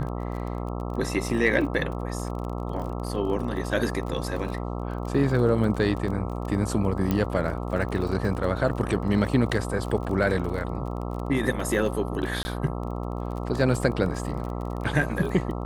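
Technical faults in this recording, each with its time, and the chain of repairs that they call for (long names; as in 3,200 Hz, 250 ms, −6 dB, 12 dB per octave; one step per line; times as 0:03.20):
mains buzz 60 Hz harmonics 22 −31 dBFS
surface crackle 29 per second −33 dBFS
0:07.11: click −12 dBFS
0:12.43–0:12.45: drop-out 20 ms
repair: click removal
hum removal 60 Hz, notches 22
repair the gap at 0:12.43, 20 ms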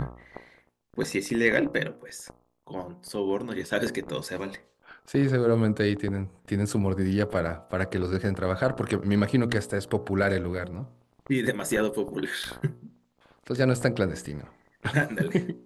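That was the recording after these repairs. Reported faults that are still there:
none of them is left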